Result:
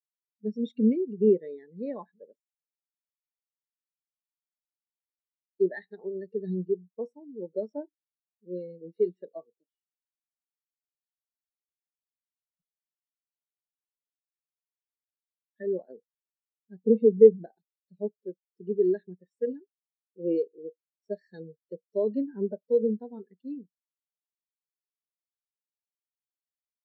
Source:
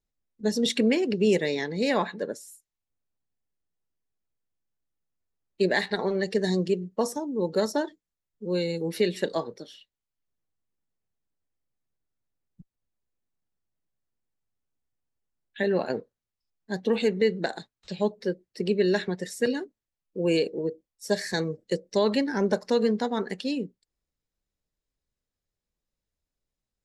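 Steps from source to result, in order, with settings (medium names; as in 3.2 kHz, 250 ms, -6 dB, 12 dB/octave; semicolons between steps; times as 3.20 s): 16.84–17.58 s: tilt EQ -2 dB/octave; spectral contrast expander 2.5:1; trim +5.5 dB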